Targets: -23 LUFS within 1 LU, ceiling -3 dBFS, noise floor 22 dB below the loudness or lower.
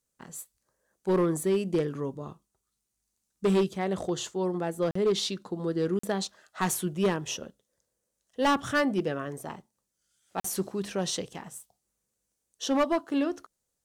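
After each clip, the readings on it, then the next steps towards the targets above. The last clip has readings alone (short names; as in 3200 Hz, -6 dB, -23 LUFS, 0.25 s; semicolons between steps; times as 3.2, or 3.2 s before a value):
clipped 1.2%; flat tops at -19.5 dBFS; dropouts 3; longest dropout 44 ms; loudness -29.5 LUFS; peak -19.5 dBFS; loudness target -23.0 LUFS
-> clip repair -19.5 dBFS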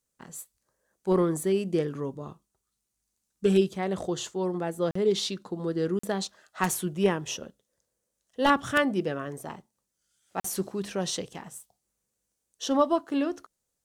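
clipped 0.0%; dropouts 3; longest dropout 44 ms
-> interpolate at 4.91/5.99/10.4, 44 ms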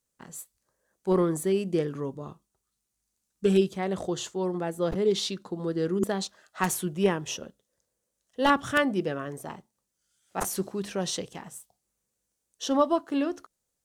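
dropouts 0; loudness -28.5 LUFS; peak -10.5 dBFS; loudness target -23.0 LUFS
-> gain +5.5 dB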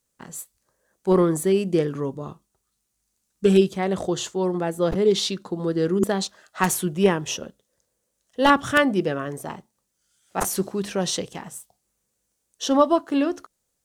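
loudness -23.0 LUFS; peak -5.0 dBFS; noise floor -76 dBFS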